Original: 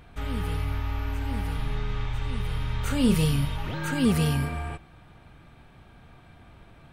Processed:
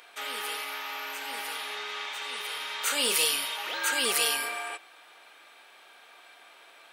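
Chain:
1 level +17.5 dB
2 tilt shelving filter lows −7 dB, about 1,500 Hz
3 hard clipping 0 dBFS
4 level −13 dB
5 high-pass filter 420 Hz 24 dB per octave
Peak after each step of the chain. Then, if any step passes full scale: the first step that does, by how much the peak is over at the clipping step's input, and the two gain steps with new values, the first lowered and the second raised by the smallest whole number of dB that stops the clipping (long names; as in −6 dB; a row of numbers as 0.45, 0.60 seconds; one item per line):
+7.5, +4.0, 0.0, −13.0, −11.0 dBFS
step 1, 4.0 dB
step 1 +13.5 dB, step 4 −9 dB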